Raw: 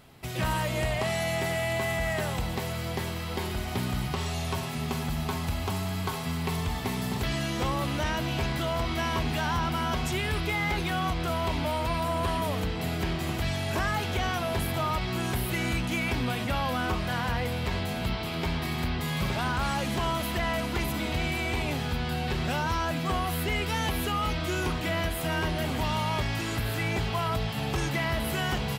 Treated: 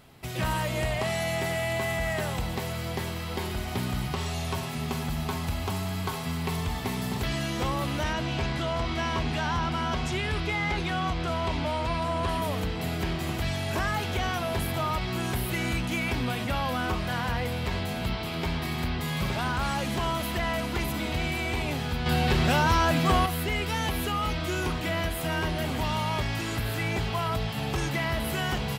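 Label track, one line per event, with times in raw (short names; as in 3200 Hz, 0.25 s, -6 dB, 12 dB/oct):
8.130000	12.290000	LPF 7400 Hz
22.060000	23.260000	gain +6 dB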